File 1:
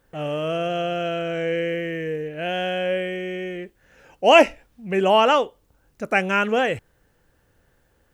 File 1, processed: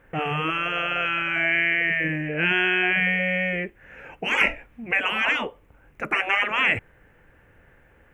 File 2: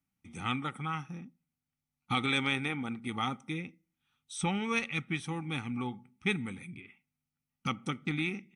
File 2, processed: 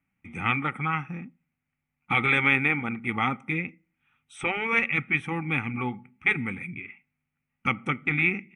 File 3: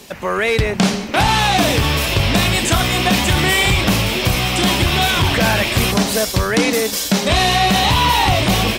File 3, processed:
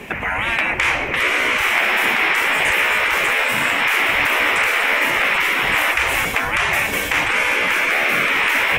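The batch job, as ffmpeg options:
ffmpeg -i in.wav -af "afftfilt=real='re*lt(hypot(re,im),0.2)':imag='im*lt(hypot(re,im),0.2)':win_size=1024:overlap=0.75,highshelf=frequency=3200:width_type=q:width=3:gain=-11.5,volume=6.5dB" out.wav

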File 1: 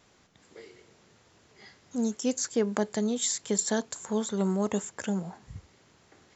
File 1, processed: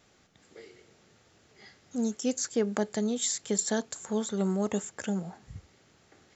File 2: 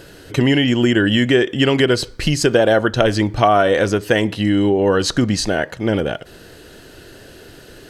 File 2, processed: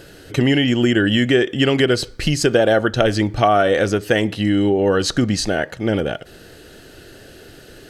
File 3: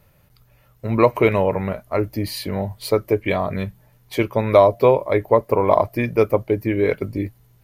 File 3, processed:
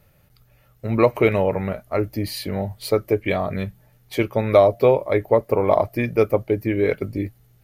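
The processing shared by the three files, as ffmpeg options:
ffmpeg -i in.wav -af "bandreject=frequency=1000:width=7.9,volume=-1dB" out.wav

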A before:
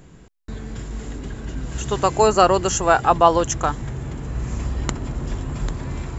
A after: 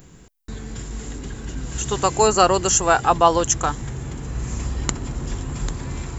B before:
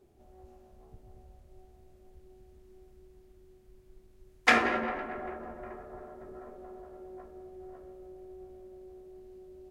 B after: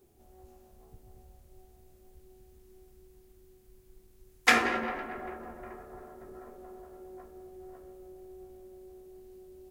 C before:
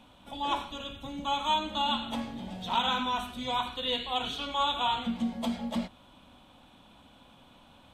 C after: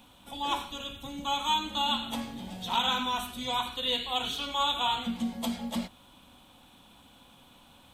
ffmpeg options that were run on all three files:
ffmpeg -i in.wav -af "aemphasis=mode=production:type=50kf,bandreject=frequency=620:width=12,volume=-1dB" out.wav

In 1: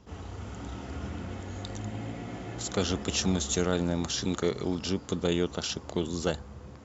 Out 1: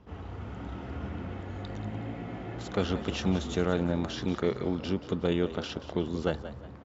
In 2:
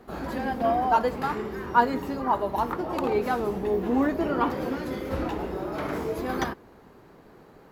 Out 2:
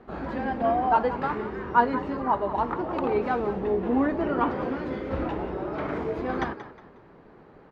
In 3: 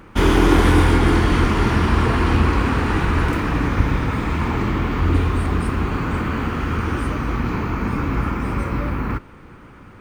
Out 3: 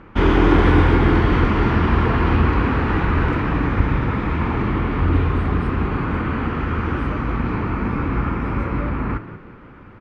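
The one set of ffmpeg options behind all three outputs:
ffmpeg -i in.wav -filter_complex "[0:a]lowpass=2800,asplit=4[link_01][link_02][link_03][link_04];[link_02]adelay=181,afreqshift=58,volume=-13.5dB[link_05];[link_03]adelay=362,afreqshift=116,volume=-23.4dB[link_06];[link_04]adelay=543,afreqshift=174,volume=-33.3dB[link_07];[link_01][link_05][link_06][link_07]amix=inputs=4:normalize=0" out.wav

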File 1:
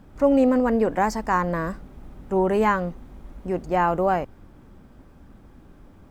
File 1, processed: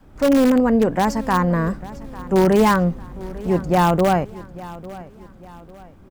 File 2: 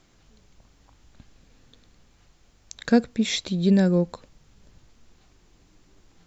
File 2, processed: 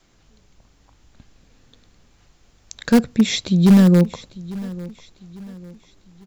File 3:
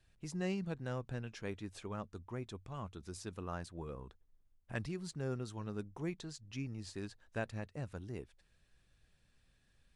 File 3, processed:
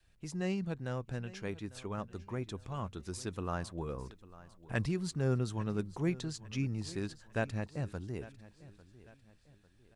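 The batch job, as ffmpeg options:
ffmpeg -i in.wav -filter_complex "[0:a]dynaudnorm=framelen=140:gausssize=31:maxgain=4dB,asplit=2[link_01][link_02];[link_02]aeval=exprs='(mod(3.76*val(0)+1,2)-1)/3.76':channel_layout=same,volume=-9dB[link_03];[link_01][link_03]amix=inputs=2:normalize=0,adynamicequalizer=threshold=0.0178:dfrequency=140:dqfactor=0.89:tfrequency=140:tqfactor=0.89:attack=5:release=100:ratio=0.375:range=4:mode=boostabove:tftype=bell,aecho=1:1:849|1698|2547:0.119|0.0487|0.02,volume=-1dB" out.wav

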